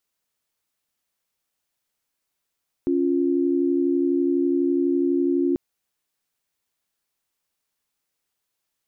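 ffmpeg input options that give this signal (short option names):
-f lavfi -i "aevalsrc='0.0891*(sin(2*PI*277.18*t)+sin(2*PI*349.23*t))':d=2.69:s=44100"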